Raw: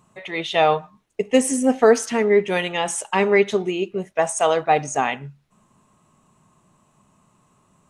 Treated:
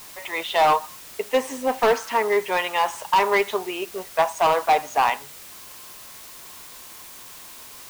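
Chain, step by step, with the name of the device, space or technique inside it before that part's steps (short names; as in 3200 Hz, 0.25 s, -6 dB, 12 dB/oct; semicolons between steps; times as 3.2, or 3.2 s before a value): drive-through speaker (BPF 520–4000 Hz; bell 1000 Hz +12 dB 0.48 oct; hard clip -13 dBFS, distortion -10 dB; white noise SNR 18 dB)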